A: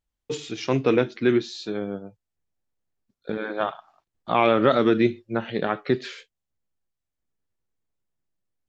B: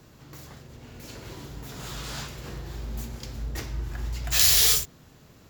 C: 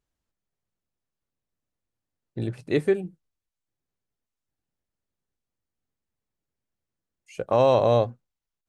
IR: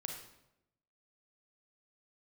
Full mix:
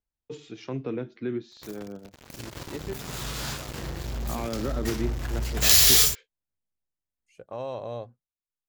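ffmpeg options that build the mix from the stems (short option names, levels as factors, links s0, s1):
-filter_complex "[0:a]highshelf=f=2100:g=-7.5,acrossover=split=300[s0][s1];[s1]acompressor=threshold=0.0282:ratio=2[s2];[s0][s2]amix=inputs=2:normalize=0,volume=0.422[s3];[1:a]acrusher=bits=5:mix=0:aa=0.5,adelay=1300,volume=1.26[s4];[2:a]volume=0.168,asplit=2[s5][s6];[s6]apad=whole_len=382952[s7];[s3][s7]sidechaincompress=threshold=0.00251:ratio=8:attack=16:release=928[s8];[s8][s4][s5]amix=inputs=3:normalize=0"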